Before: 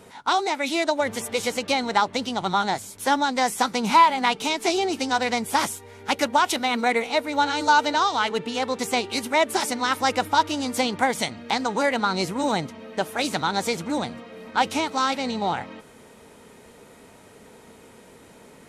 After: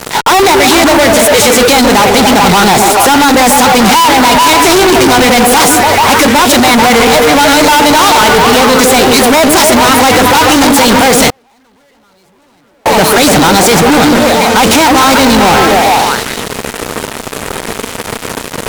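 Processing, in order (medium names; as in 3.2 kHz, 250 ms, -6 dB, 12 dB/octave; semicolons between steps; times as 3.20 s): repeats whose band climbs or falls 145 ms, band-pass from 330 Hz, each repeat 0.7 oct, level -2 dB; fuzz box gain 46 dB, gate -44 dBFS; 11.30–12.86 s: gate -6 dBFS, range -42 dB; trim +8.5 dB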